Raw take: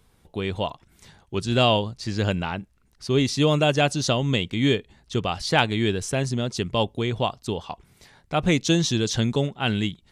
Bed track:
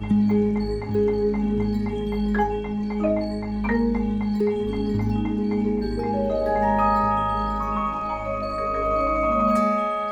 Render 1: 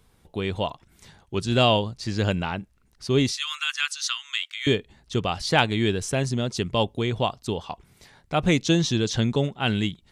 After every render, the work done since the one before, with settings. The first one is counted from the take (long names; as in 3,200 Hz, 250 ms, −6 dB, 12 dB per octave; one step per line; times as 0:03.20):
0:03.31–0:04.67: Butterworth high-pass 1,200 Hz 48 dB per octave
0:08.64–0:09.44: high-shelf EQ 8,300 Hz −9 dB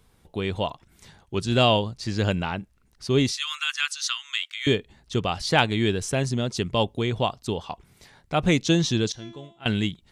0:09.12–0:09.66: tuned comb filter 340 Hz, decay 0.54 s, mix 90%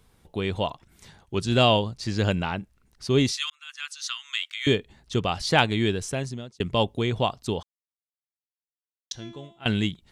0:03.50–0:04.50: fade in
0:05.56–0:06.60: fade out equal-power
0:07.63–0:09.11: silence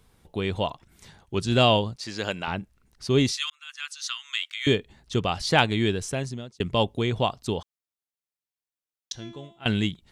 0:01.96–0:02.48: high-pass filter 580 Hz 6 dB per octave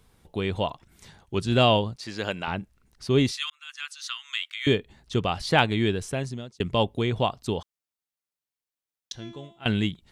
dynamic equaliser 6,300 Hz, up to −6 dB, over −44 dBFS, Q 1.1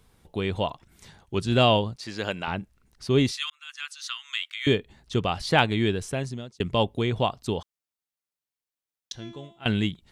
no processing that can be heard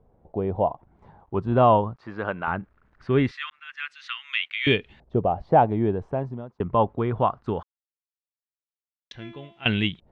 bit reduction 11 bits
auto-filter low-pass saw up 0.2 Hz 630–2,900 Hz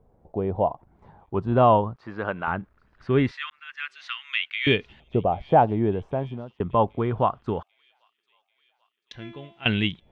delay with a high-pass on its return 790 ms, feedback 61%, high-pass 3,800 Hz, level −18.5 dB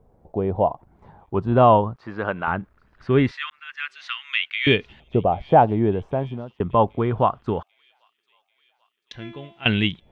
level +3 dB